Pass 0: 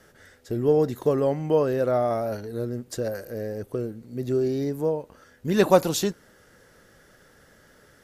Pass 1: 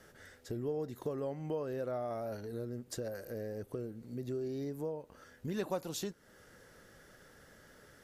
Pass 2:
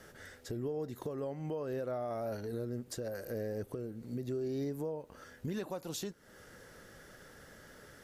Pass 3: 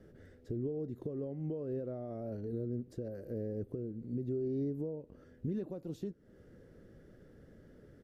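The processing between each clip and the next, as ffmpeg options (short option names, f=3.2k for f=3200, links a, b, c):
-af "acompressor=threshold=-37dB:ratio=2.5,volume=-3.5dB"
-af "alimiter=level_in=9.5dB:limit=-24dB:level=0:latency=1:release=334,volume=-9.5dB,volume=4dB"
-af "firequalizer=gain_entry='entry(340,0);entry(890,-18);entry(1900,-17);entry(6700,-24)':delay=0.05:min_phase=1,volume=2dB"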